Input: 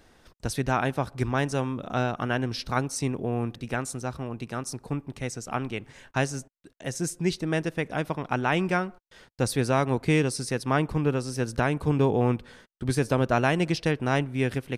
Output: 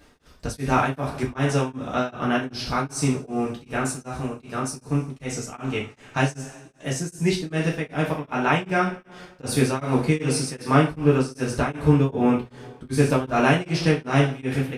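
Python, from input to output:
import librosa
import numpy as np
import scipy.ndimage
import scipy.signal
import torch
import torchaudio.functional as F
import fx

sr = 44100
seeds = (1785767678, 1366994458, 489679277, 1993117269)

y = fx.rev_double_slope(x, sr, seeds[0], early_s=0.41, late_s=2.1, knee_db=-20, drr_db=-5.0)
y = y * np.abs(np.cos(np.pi * 2.6 * np.arange(len(y)) / sr))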